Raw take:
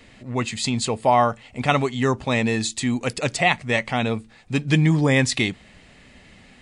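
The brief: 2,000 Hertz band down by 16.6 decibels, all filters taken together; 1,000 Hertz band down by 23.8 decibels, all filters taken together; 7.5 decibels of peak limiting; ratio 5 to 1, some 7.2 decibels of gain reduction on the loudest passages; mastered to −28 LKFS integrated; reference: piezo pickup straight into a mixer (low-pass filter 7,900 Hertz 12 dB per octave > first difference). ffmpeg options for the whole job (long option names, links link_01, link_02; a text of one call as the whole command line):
ffmpeg -i in.wav -af "equalizer=frequency=1000:width_type=o:gain=-6.5,equalizer=frequency=2000:width_type=o:gain=-6.5,acompressor=threshold=-22dB:ratio=5,alimiter=limit=-20dB:level=0:latency=1,lowpass=7900,aderivative,volume=13dB" out.wav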